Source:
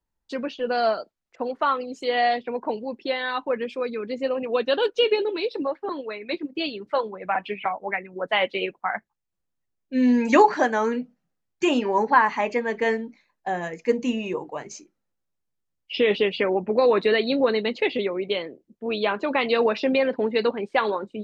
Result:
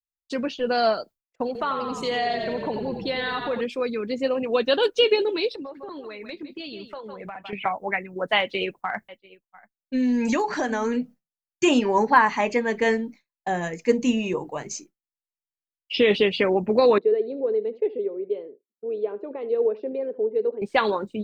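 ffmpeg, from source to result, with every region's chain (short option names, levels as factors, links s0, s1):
-filter_complex "[0:a]asettb=1/sr,asplit=3[s0][s1][s2];[s0]atrim=end=1.464[s3];[s1]atrim=start=1.46:end=3.61,asetpts=PTS-STARTPTS,afade=t=in:d=0.004:c=qsin,afade=t=out:st=2.146:d=0.004:c=qsin,asplit=9[s4][s5][s6][s7][s8][s9][s10][s11][s12];[s5]adelay=87,afreqshift=-33,volume=0.398[s13];[s6]adelay=174,afreqshift=-66,volume=0.24[s14];[s7]adelay=261,afreqshift=-99,volume=0.143[s15];[s8]adelay=348,afreqshift=-132,volume=0.0861[s16];[s9]adelay=435,afreqshift=-165,volume=0.0519[s17];[s10]adelay=522,afreqshift=-198,volume=0.0309[s18];[s11]adelay=609,afreqshift=-231,volume=0.0186[s19];[s12]adelay=696,afreqshift=-264,volume=0.0111[s20];[s4][s13][s14][s15][s16][s17][s18][s19][s20]amix=inputs=9:normalize=0,atrim=end_sample=94815,acompressor=threshold=0.0501:ratio=2:attack=3.2:release=140:knee=1:detection=peak[s21];[s2]atrim=start=3.606[s22];[s3][s21]acrossfade=d=0.004:c1=hsin:c2=qsin[s23];[s23][s22]acrossfade=d=0.004:c1=qsin:c2=hsin,asettb=1/sr,asplit=3[s24][s25][s26];[s24]atrim=end=5.494[s27];[s25]atrim=start=5.49:end=7.53,asetpts=PTS-STARTPTS,afade=t=in:d=0.004:c=qsin,afade=t=out:st=2.036:d=0.004:c=qsin,aecho=1:1:154:0.188,atrim=end_sample=89964,acompressor=threshold=0.0178:ratio=6:attack=3.2:release=140:knee=1:detection=peak[s28];[s26]atrim=start=7.526[s29];[s27][s28]acrossfade=d=0.004:c1=hsin:c2=qsin[s30];[s30][s29]acrossfade=d=0.004:c1=qsin:c2=hsin,asettb=1/sr,asplit=3[s31][s32][s33];[s31]atrim=end=8.404[s34];[s32]atrim=start=8.4:end=10.97,asetpts=PTS-STARTPTS,afade=t=in:d=0.004:c=qsin,afade=t=out:st=2.566:d=0.004:c=qsin,aecho=1:1:685:0.0944,atrim=end_sample=113337,acompressor=threshold=0.0708:ratio=4:attack=3.2:release=140:knee=1:detection=peak[s35];[s33]atrim=start=10.966[s36];[s34][s35]acrossfade=d=0.004:c1=hsin:c2=qsin[s37];[s37][s36]acrossfade=d=0.004:c1=qsin:c2=hsin,asettb=1/sr,asplit=3[s38][s39][s40];[s38]atrim=end=16.984[s41];[s39]atrim=start=16.98:end=20.62,asetpts=PTS-STARTPTS,afade=t=in:d=0.004:c=qsin,afade=t=out:st=3.636:d=0.004:c=qsin,bandpass=f=430:t=q:w=4.9,aecho=1:1:75:0.126,atrim=end_sample=160524[s42];[s40]atrim=start=20.616[s43];[s41][s42]acrossfade=d=0.004:c1=hsin:c2=qsin[s44];[s44][s43]acrossfade=d=0.004:c1=qsin:c2=hsin,aemphasis=mode=production:type=50kf,agate=range=0.0224:threshold=0.01:ratio=3:detection=peak,lowshelf=f=160:g=11"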